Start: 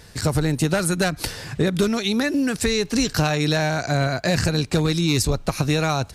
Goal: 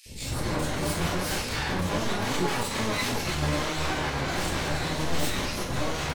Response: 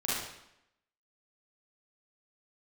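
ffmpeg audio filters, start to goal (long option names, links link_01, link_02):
-filter_complex "[0:a]areverse,acompressor=threshold=-27dB:ratio=8,areverse,acrossover=split=670|4600[link_01][link_02][link_03];[link_01]adelay=60[link_04];[link_02]adelay=240[link_05];[link_04][link_05][link_03]amix=inputs=3:normalize=0,aeval=exprs='0.0224*(abs(mod(val(0)/0.0224+3,4)-2)-1)':channel_layout=same[link_06];[1:a]atrim=start_sample=2205,asetrate=61740,aresample=44100[link_07];[link_06][link_07]afir=irnorm=-1:irlink=0,asplit=2[link_08][link_09];[link_09]asetrate=22050,aresample=44100,atempo=2,volume=-1dB[link_10];[link_08][link_10]amix=inputs=2:normalize=0,volume=3dB"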